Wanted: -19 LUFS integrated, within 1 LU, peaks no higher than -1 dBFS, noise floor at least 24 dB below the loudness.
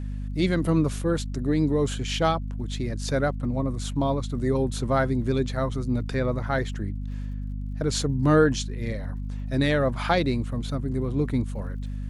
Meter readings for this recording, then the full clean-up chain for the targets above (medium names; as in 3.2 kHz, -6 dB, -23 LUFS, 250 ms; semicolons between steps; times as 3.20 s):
tick rate 52 per s; hum 50 Hz; highest harmonic 250 Hz; hum level -29 dBFS; loudness -26.0 LUFS; peak level -8.5 dBFS; loudness target -19.0 LUFS
-> de-click; de-hum 50 Hz, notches 5; trim +7 dB